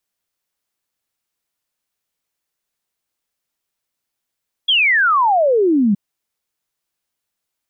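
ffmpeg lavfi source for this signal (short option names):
-f lavfi -i "aevalsrc='0.282*clip(min(t,1.27-t)/0.01,0,1)*sin(2*PI*3400*1.27/log(190/3400)*(exp(log(190/3400)*t/1.27)-1))':d=1.27:s=44100"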